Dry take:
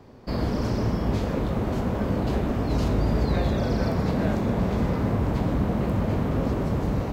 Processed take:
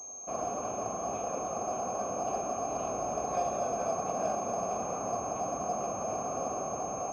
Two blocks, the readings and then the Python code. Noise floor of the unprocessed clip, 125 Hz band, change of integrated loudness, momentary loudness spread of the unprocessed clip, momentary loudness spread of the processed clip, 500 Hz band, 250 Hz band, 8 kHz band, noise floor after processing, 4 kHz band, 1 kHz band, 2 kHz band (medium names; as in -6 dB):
-29 dBFS, -23.5 dB, -8.0 dB, 3 LU, 3 LU, -4.0 dB, -17.0 dB, no reading, -38 dBFS, -15.5 dB, +1.5 dB, -12.0 dB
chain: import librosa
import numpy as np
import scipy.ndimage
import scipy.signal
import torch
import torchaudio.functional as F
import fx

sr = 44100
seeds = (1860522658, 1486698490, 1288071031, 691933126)

y = fx.vowel_filter(x, sr, vowel='a')
y = fx.pwm(y, sr, carrier_hz=6400.0)
y = y * 10.0 ** (6.5 / 20.0)